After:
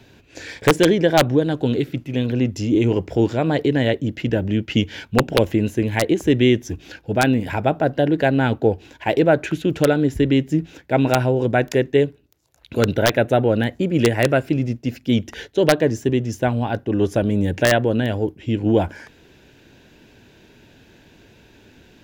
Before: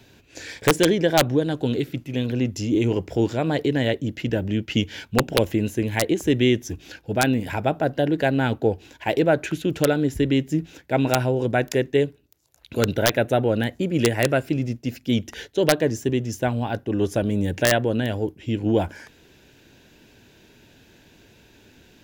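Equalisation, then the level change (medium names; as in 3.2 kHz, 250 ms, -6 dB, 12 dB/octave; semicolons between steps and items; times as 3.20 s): treble shelf 4.9 kHz -7.5 dB; +3.5 dB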